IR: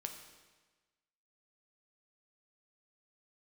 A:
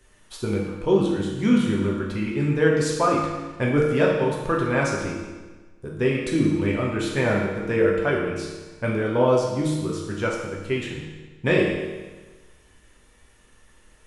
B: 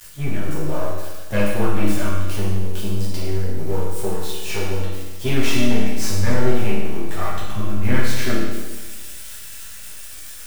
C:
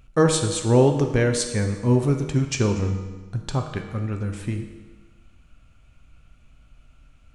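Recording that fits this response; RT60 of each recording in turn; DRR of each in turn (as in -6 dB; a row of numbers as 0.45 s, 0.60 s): C; 1.3 s, 1.3 s, 1.3 s; -3.5 dB, -9.0 dB, 4.0 dB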